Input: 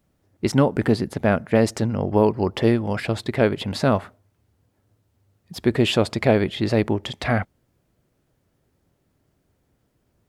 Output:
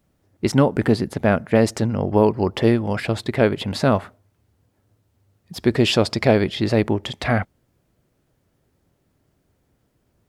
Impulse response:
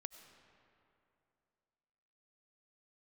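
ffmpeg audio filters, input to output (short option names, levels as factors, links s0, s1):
-filter_complex "[0:a]asettb=1/sr,asplit=3[s0][s1][s2];[s0]atrim=end=5.594[s3];[s1]atrim=start=5.59:end=6.63,asetpts=PTS-STARTPTS,afade=t=in:d=0.004:c=qsin,afade=t=out:st=1.036:d=0.004:c=qsin,equalizer=f=5200:t=o:w=0.47:g=8[s4];[s2]atrim=start=6.626[s5];[s3][s4]acrossfade=d=0.004:c1=hsin:c2=qsin[s6];[s6][s5]acrossfade=d=0.004:c1=qsin:c2=hsin,volume=1.19"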